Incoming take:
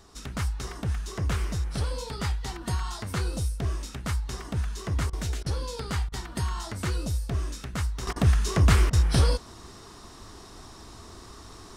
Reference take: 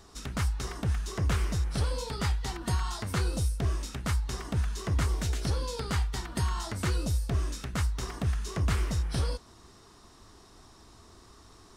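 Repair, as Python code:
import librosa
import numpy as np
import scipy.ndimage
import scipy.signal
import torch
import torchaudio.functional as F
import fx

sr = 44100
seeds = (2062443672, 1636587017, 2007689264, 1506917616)

y = fx.fix_interpolate(x, sr, at_s=(5.1, 5.43, 6.09, 8.13, 8.9), length_ms=29.0)
y = fx.fix_level(y, sr, at_s=8.07, step_db=-8.5)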